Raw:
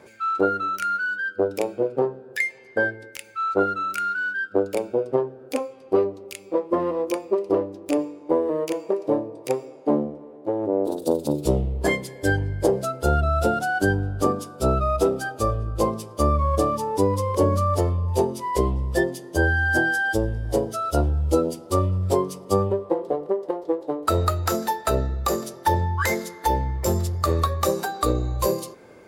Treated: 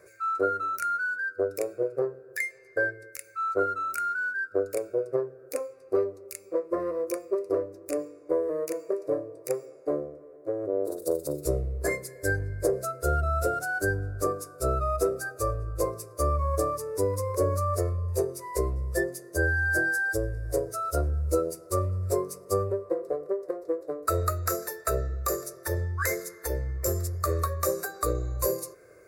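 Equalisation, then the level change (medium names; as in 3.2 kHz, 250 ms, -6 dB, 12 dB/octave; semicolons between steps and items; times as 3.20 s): treble shelf 6.3 kHz +8 dB; static phaser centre 860 Hz, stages 6; -4.0 dB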